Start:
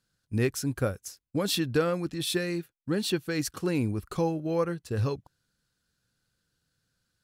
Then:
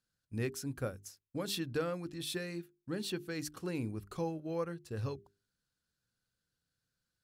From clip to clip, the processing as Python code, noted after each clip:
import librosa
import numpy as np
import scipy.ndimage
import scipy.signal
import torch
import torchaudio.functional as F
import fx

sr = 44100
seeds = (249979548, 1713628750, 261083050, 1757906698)

y = fx.hum_notches(x, sr, base_hz=50, count=8)
y = y * librosa.db_to_amplitude(-9.0)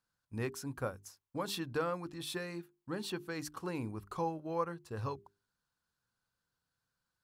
y = fx.peak_eq(x, sr, hz=980.0, db=12.5, octaves=0.92)
y = y * librosa.db_to_amplitude(-2.5)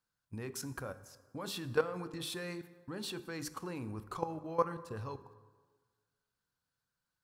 y = fx.level_steps(x, sr, step_db=16)
y = fx.rev_plate(y, sr, seeds[0], rt60_s=1.5, hf_ratio=0.6, predelay_ms=0, drr_db=13.0)
y = y * librosa.db_to_amplitude(7.0)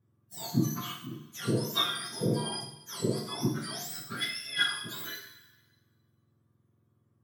y = fx.octave_mirror(x, sr, pivot_hz=1300.0)
y = fx.rev_double_slope(y, sr, seeds[1], early_s=0.56, late_s=1.7, knee_db=-24, drr_db=-1.5)
y = y * librosa.db_to_amplitude(4.5)